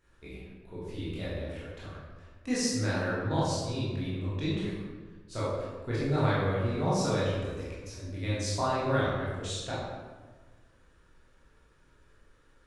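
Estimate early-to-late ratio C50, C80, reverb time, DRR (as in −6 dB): −1.5 dB, 1.0 dB, 1.4 s, −9.0 dB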